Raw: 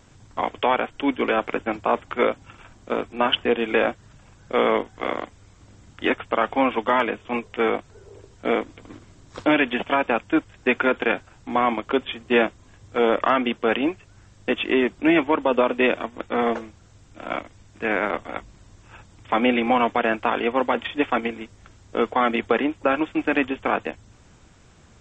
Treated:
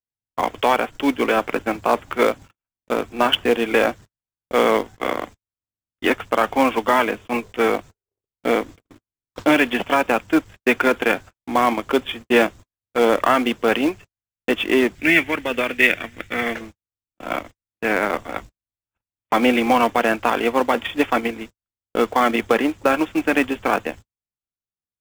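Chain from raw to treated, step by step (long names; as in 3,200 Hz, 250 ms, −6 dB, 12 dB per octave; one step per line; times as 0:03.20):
noise gate −38 dBFS, range −50 dB
0:14.95–0:16.61: octave-band graphic EQ 125/250/500/1,000/2,000 Hz +3/−5/−5/−12/+10 dB
in parallel at −5 dB: log-companded quantiser 4 bits
on the sum: level −1 dB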